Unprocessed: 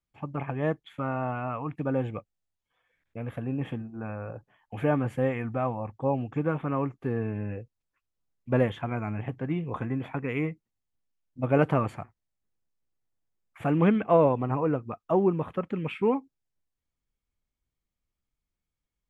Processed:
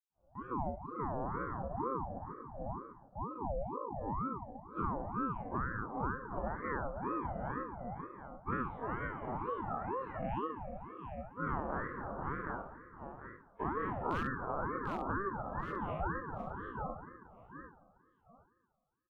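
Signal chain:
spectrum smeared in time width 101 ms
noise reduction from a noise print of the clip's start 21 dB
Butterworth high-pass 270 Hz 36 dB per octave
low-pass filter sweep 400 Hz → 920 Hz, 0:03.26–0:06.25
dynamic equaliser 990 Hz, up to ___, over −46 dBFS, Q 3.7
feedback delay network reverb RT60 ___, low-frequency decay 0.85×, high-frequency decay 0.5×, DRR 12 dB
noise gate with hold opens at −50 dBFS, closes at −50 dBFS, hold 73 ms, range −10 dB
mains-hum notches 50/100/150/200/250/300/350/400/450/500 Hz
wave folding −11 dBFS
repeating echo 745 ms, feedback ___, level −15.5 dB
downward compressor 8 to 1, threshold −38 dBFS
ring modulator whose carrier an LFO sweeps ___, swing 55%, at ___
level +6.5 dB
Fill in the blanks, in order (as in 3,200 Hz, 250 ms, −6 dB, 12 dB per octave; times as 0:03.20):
+3 dB, 2.1 s, 26%, 520 Hz, 2.1 Hz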